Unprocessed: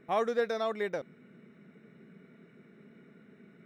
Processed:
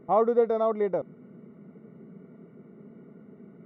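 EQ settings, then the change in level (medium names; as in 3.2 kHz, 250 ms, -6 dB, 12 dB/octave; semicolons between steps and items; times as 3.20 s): Savitzky-Golay filter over 65 samples; +7.5 dB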